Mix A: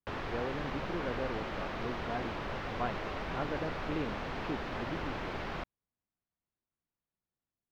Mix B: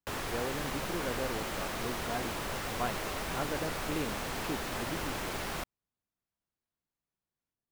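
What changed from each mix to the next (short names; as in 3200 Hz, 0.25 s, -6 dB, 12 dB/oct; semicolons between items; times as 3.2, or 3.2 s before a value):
master: remove air absorption 250 m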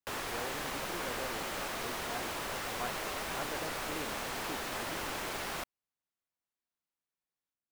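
speech -4.5 dB; master: add low shelf 240 Hz -9 dB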